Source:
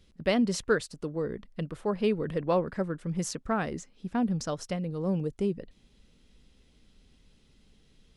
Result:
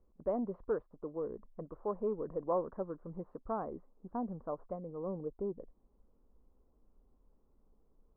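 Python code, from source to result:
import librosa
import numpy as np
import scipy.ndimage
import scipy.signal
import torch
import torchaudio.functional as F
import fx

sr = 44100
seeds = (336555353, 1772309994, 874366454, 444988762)

y = 10.0 ** (-17.0 / 20.0) * np.tanh(x / 10.0 ** (-17.0 / 20.0))
y = scipy.signal.sosfilt(scipy.signal.cheby1(4, 1.0, 1100.0, 'lowpass', fs=sr, output='sos'), y)
y = fx.peak_eq(y, sr, hz=130.0, db=-13.5, octaves=2.0)
y = F.gain(torch.from_numpy(y), -2.5).numpy()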